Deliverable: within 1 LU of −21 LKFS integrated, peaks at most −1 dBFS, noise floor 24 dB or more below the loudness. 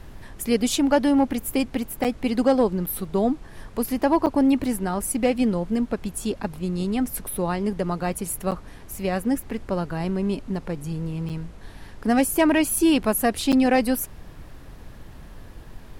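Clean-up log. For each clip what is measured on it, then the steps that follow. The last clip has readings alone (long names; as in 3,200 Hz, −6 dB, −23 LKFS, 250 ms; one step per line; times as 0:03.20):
number of dropouts 6; longest dropout 7.6 ms; background noise floor −43 dBFS; target noise floor −48 dBFS; integrated loudness −23.5 LKFS; sample peak −9.0 dBFS; target loudness −21.0 LKFS
→ repair the gap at 0:02.04/0:02.86/0:04.26/0:08.51/0:11.29/0:13.52, 7.6 ms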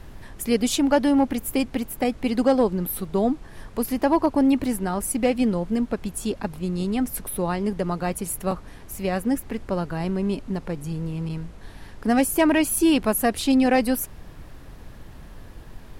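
number of dropouts 0; background noise floor −43 dBFS; target noise floor −48 dBFS
→ noise reduction from a noise print 6 dB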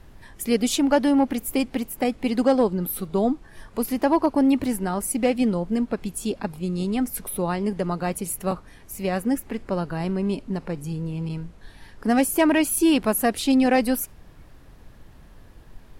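background noise floor −48 dBFS; integrated loudness −23.5 LKFS; sample peak −9.0 dBFS; target loudness −21.0 LKFS
→ level +2.5 dB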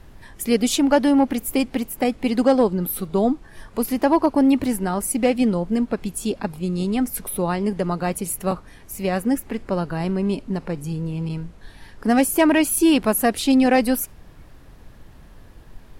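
integrated loudness −21.0 LKFS; sample peak −6.5 dBFS; background noise floor −46 dBFS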